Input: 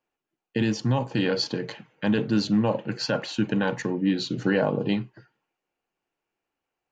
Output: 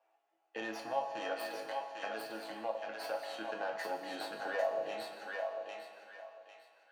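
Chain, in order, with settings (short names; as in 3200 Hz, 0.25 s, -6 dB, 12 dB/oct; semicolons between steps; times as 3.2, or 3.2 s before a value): tracing distortion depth 0.18 ms; LPF 2900 Hz 6 dB/oct; 1.33–3.36 compressor 4:1, threshold -30 dBFS, peak gain reduction 10.5 dB; limiter -19 dBFS, peak gain reduction 8 dB; resonant high-pass 690 Hz, resonance Q 4.9; resonator bank A2 major, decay 0.31 s; thinning echo 0.799 s, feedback 20%, high-pass 870 Hz, level -3 dB; digital reverb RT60 1.6 s, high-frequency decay 0.9×, pre-delay 65 ms, DRR 9.5 dB; three-band squash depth 40%; gain +6 dB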